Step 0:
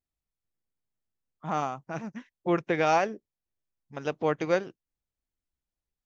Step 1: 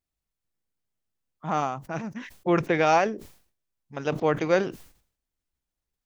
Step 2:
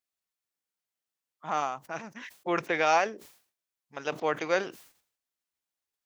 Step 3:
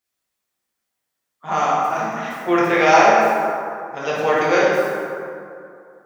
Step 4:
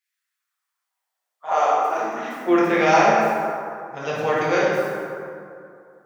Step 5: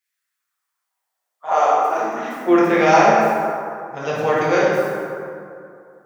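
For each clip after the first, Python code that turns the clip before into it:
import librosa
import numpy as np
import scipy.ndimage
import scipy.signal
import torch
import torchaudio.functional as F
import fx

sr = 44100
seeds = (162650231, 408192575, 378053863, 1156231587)

y1 = fx.sustainer(x, sr, db_per_s=110.0)
y1 = y1 * librosa.db_to_amplitude(3.0)
y2 = fx.highpass(y1, sr, hz=810.0, slope=6)
y3 = fx.rev_plate(y2, sr, seeds[0], rt60_s=2.5, hf_ratio=0.45, predelay_ms=0, drr_db=-7.5)
y3 = y3 * librosa.db_to_amplitude(4.5)
y4 = fx.filter_sweep_highpass(y3, sr, from_hz=1900.0, to_hz=110.0, start_s=0.07, end_s=3.54, q=2.8)
y4 = y4 * librosa.db_to_amplitude(-4.0)
y5 = fx.peak_eq(y4, sr, hz=3000.0, db=-3.0, octaves=1.9)
y5 = y5 * librosa.db_to_amplitude(3.5)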